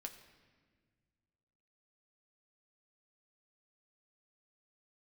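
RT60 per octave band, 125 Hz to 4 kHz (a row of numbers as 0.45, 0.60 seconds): 2.6, 2.3, 1.7, 1.4, 1.5, 1.2 seconds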